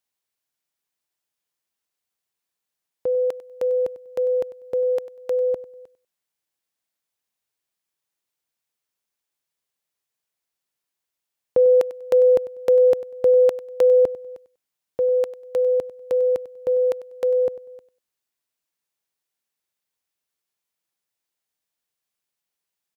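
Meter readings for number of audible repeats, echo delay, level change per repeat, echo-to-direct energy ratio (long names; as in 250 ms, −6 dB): 2, 97 ms, −14.0 dB, −17.0 dB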